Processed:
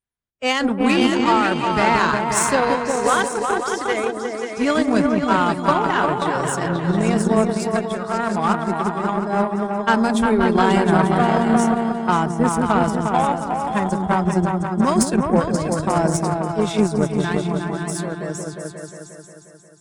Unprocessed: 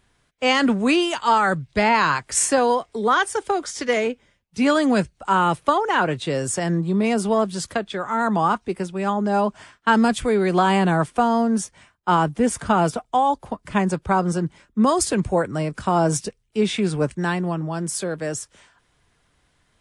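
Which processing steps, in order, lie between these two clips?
spectral noise reduction 25 dB; delay with an opening low-pass 178 ms, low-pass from 400 Hz, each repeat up 2 oct, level 0 dB; Chebyshev shaper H 7 -25 dB, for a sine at -2.5 dBFS

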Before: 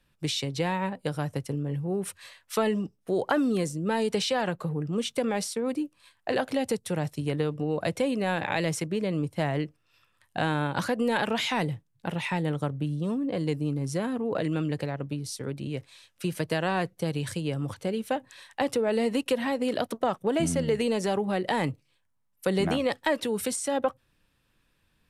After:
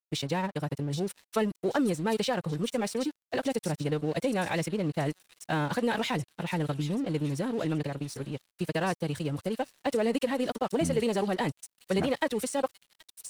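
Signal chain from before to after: time stretch by phase-locked vocoder 0.53×; feedback echo behind a high-pass 780 ms, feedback 49%, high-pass 4.4 kHz, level -4 dB; crossover distortion -46.5 dBFS

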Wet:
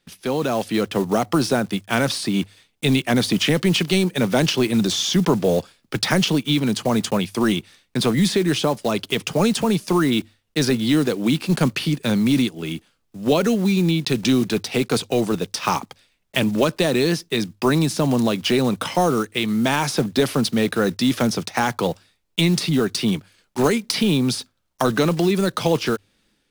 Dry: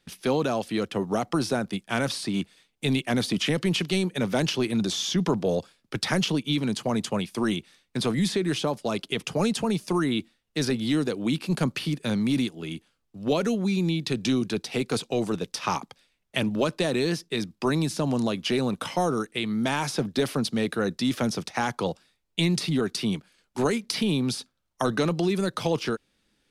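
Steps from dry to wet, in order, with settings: block-companded coder 5-bit; hum notches 50/100 Hz; level rider gain up to 6.5 dB

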